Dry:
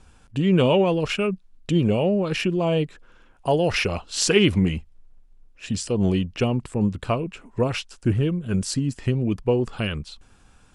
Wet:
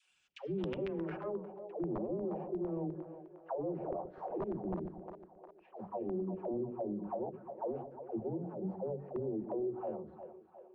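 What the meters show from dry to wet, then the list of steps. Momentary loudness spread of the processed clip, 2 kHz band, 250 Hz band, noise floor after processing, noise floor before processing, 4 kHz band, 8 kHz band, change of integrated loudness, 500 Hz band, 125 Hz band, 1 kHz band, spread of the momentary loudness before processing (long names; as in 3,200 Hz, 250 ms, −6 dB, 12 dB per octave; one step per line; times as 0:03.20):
13 LU, below −25 dB, −16.0 dB, −64 dBFS, −55 dBFS, below −30 dB, below −40 dB, −16.5 dB, −14.0 dB, −22.0 dB, −13.0 dB, 12 LU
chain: lower of the sound and its delayed copy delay 5.4 ms
envelope filter 350–2,900 Hz, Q 2.8, down, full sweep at −19 dBFS
downward compressor 3 to 1, threshold −30 dBFS, peak gain reduction 10.5 dB
high-shelf EQ 6,400 Hz +8 dB
mains-hum notches 50/100/150/200/250 Hz
all-pass dispersion lows, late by 114 ms, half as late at 410 Hz
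wrap-around overflow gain 23 dB
on a send: echo with a time of its own for lows and highs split 430 Hz, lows 126 ms, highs 356 ms, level −10.5 dB
on the sum: low-pass filter sweep 8,700 Hz → 760 Hz, 0:00.11–0:01.59
low-shelf EQ 230 Hz +9.5 dB
brickwall limiter −22 dBFS, peak gain reduction 6.5 dB
level −7.5 dB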